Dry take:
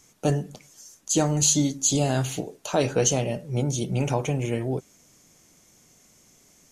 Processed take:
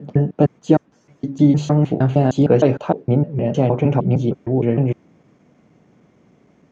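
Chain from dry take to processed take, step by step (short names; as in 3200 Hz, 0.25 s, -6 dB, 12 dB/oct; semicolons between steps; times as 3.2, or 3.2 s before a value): slices in reverse order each 0.154 s, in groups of 4; BPF 160–2400 Hz; tilt -3 dB/oct; gain +5.5 dB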